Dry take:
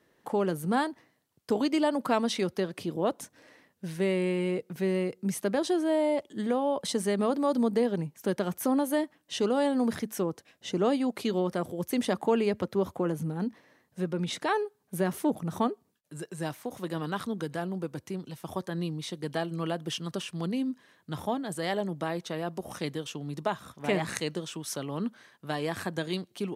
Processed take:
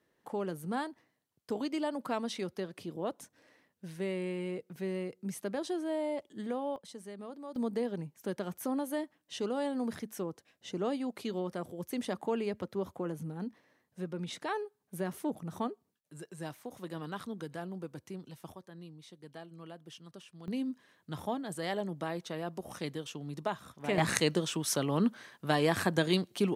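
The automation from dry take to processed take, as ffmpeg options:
-af "asetnsamples=n=441:p=0,asendcmd='6.76 volume volume -18dB;7.56 volume volume -7.5dB;18.52 volume volume -16.5dB;20.48 volume volume -4.5dB;23.98 volume volume 4dB',volume=0.398"

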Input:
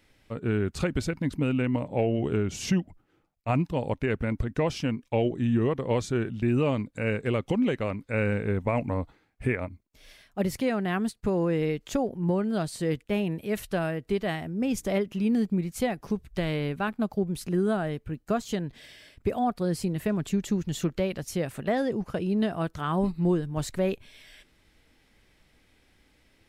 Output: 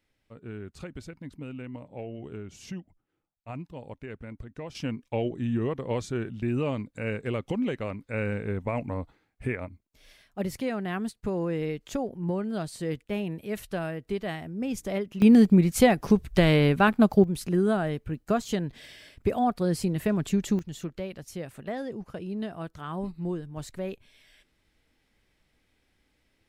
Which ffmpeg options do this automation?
-af "asetnsamples=n=441:p=0,asendcmd='4.75 volume volume -3.5dB;15.22 volume volume 8.5dB;17.24 volume volume 1.5dB;20.59 volume volume -7.5dB',volume=0.224"

